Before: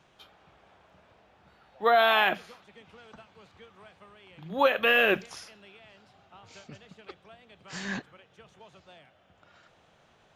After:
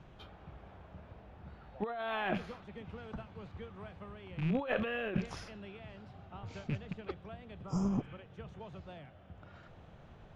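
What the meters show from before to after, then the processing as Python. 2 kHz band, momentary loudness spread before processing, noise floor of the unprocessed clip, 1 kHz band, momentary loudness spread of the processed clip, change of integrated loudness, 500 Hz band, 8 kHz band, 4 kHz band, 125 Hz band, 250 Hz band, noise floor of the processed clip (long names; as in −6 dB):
−14.5 dB, 17 LU, −63 dBFS, −13.5 dB, 20 LU, −14.5 dB, −11.0 dB, −9.0 dB, −17.0 dB, +9.5 dB, +2.5 dB, −56 dBFS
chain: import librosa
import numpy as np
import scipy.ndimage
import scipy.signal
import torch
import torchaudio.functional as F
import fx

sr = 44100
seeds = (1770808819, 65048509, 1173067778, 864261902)

y = fx.rattle_buzz(x, sr, strikes_db=-47.0, level_db=-33.0)
y = fx.riaa(y, sr, side='playback')
y = fx.over_compress(y, sr, threshold_db=-30.0, ratio=-1.0)
y = fx.spec_repair(y, sr, seeds[0], start_s=7.62, length_s=0.52, low_hz=1400.0, high_hz=4800.0, source='both')
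y = F.gain(torch.from_numpy(y), -4.0).numpy()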